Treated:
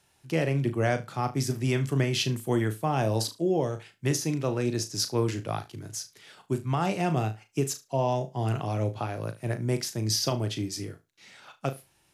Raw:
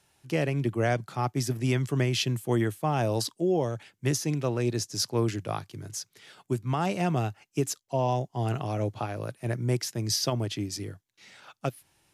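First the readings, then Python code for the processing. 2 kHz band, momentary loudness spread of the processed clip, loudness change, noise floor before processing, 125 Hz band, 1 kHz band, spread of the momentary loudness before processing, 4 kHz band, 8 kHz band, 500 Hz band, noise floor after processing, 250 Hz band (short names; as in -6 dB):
+0.5 dB, 9 LU, +0.5 dB, -74 dBFS, 0.0 dB, +0.5 dB, 9 LU, +0.5 dB, +0.5 dB, +0.5 dB, -67 dBFS, +0.5 dB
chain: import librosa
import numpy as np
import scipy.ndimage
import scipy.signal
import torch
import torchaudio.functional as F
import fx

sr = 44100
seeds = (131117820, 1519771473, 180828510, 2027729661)

y = fx.room_flutter(x, sr, wall_m=6.3, rt60_s=0.23)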